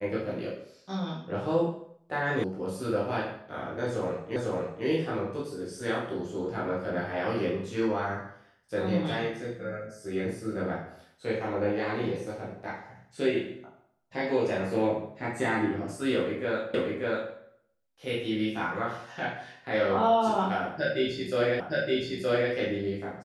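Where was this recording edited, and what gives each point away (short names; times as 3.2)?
2.44 sound cut off
4.36 repeat of the last 0.5 s
16.74 repeat of the last 0.59 s
21.6 repeat of the last 0.92 s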